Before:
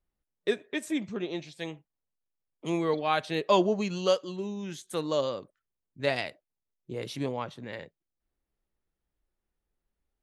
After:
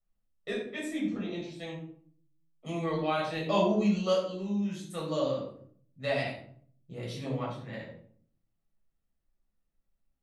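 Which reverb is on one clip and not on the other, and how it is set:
rectangular room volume 710 cubic metres, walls furnished, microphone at 6.5 metres
level −11 dB

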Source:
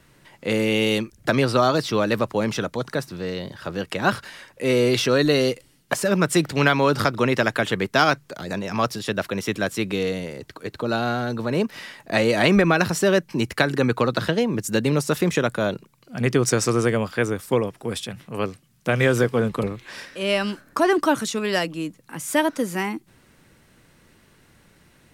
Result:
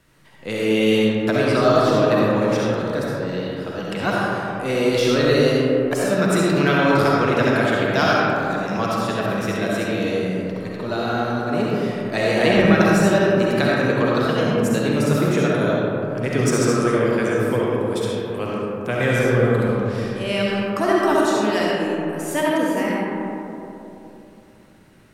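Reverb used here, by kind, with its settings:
comb and all-pass reverb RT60 3.2 s, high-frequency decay 0.3×, pre-delay 25 ms, DRR −5.5 dB
level −4.5 dB

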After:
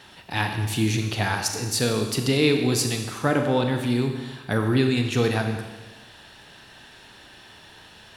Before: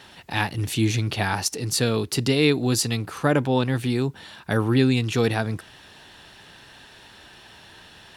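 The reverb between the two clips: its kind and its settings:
four-comb reverb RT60 1.3 s, combs from 29 ms, DRR 4.5 dB
level −1.5 dB

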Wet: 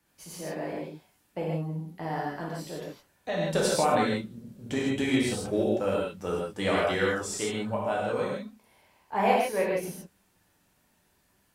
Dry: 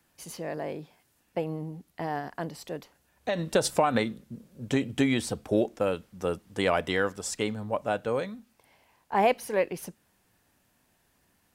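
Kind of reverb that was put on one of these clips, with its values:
reverb whose tail is shaped and stops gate 190 ms flat, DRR −5 dB
level −5.5 dB

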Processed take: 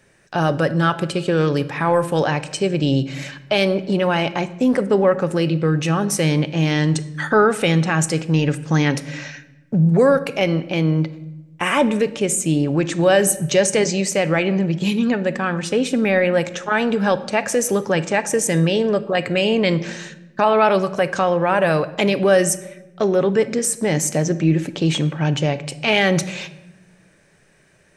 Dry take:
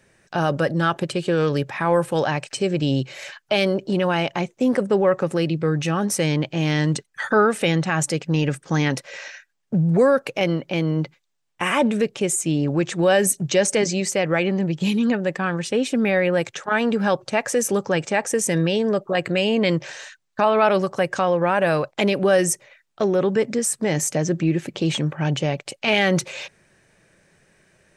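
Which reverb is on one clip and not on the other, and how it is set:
rectangular room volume 460 cubic metres, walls mixed, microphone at 0.32 metres
level +2 dB

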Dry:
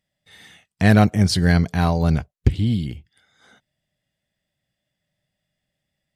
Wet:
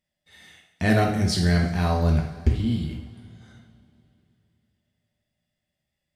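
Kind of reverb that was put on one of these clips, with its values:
coupled-rooms reverb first 0.6 s, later 3.2 s, from −19 dB, DRR −0.5 dB
level −6.5 dB

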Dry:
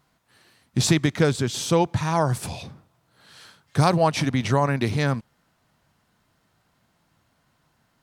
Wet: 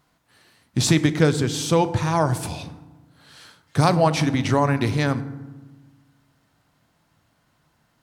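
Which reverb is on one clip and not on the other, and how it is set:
feedback delay network reverb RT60 1.2 s, low-frequency decay 1.5×, high-frequency decay 0.5×, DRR 11.5 dB
level +1 dB

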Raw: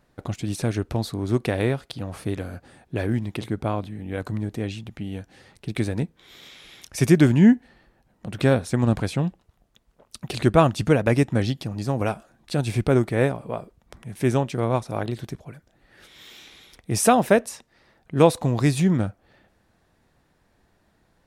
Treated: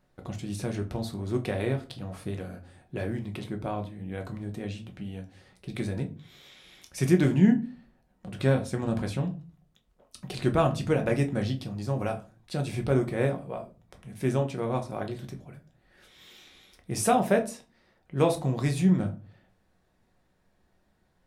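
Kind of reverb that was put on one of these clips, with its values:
rectangular room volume 160 cubic metres, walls furnished, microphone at 1 metre
level −8 dB

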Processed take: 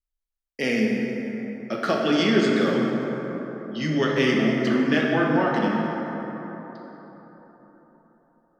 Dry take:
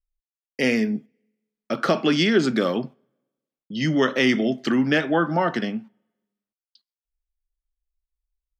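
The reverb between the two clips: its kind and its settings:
dense smooth reverb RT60 4.2 s, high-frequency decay 0.4×, DRR −2 dB
level −4.5 dB

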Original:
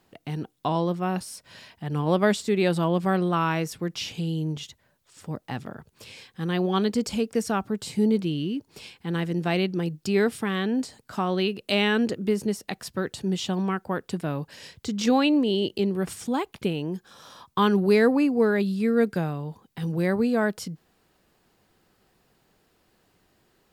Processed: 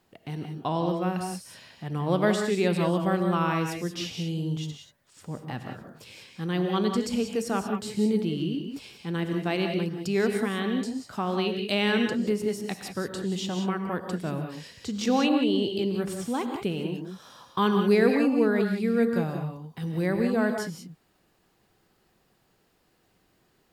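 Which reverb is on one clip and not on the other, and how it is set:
reverb whose tail is shaped and stops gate 210 ms rising, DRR 4.5 dB
level −3 dB

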